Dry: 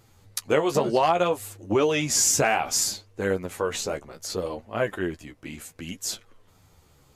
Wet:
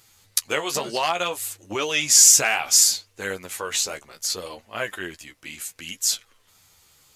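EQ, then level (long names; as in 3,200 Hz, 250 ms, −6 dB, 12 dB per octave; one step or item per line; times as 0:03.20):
tilt shelving filter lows −9.5 dB, about 1,200 Hz
0.0 dB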